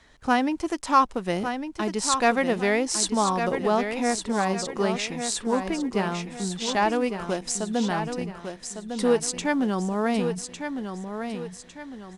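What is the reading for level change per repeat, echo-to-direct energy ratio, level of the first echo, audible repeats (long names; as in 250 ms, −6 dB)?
−8.0 dB, −7.0 dB, −7.5 dB, 4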